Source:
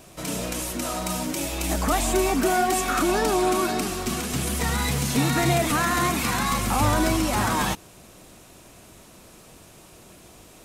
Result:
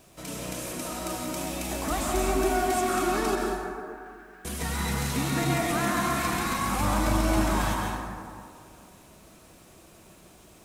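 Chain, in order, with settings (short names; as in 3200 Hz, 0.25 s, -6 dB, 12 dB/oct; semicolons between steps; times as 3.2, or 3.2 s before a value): 3.35–4.45 band-pass 1600 Hz, Q 16; bit-crush 10-bit; plate-style reverb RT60 2.2 s, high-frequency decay 0.4×, pre-delay 0.115 s, DRR -1 dB; gain -7.5 dB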